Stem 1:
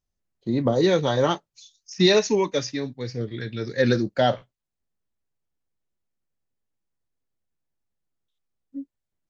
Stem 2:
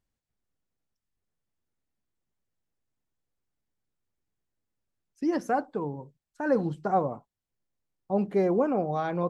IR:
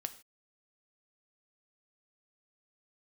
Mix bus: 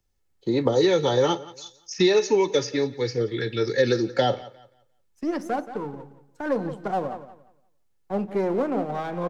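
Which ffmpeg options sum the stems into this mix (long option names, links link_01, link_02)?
-filter_complex "[0:a]aecho=1:1:2.3:0.56,volume=2dB,asplit=3[link_01][link_02][link_03];[link_02]volume=-5dB[link_04];[link_03]volume=-20.5dB[link_05];[1:a]aeval=exprs='if(lt(val(0),0),0.447*val(0),val(0))':channel_layout=same,volume=0.5dB,asplit=3[link_06][link_07][link_08];[link_07]volume=-6.5dB[link_09];[link_08]volume=-11dB[link_10];[2:a]atrim=start_sample=2205[link_11];[link_04][link_09]amix=inputs=2:normalize=0[link_12];[link_12][link_11]afir=irnorm=-1:irlink=0[link_13];[link_05][link_10]amix=inputs=2:normalize=0,aecho=0:1:175|350|525|700:1|0.24|0.0576|0.0138[link_14];[link_01][link_06][link_13][link_14]amix=inputs=4:normalize=0,acrossover=split=130|390|800|2800[link_15][link_16][link_17][link_18][link_19];[link_15]acompressor=threshold=-50dB:ratio=4[link_20];[link_16]acompressor=threshold=-24dB:ratio=4[link_21];[link_17]acompressor=threshold=-24dB:ratio=4[link_22];[link_18]acompressor=threshold=-33dB:ratio=4[link_23];[link_19]acompressor=threshold=-33dB:ratio=4[link_24];[link_20][link_21][link_22][link_23][link_24]amix=inputs=5:normalize=0"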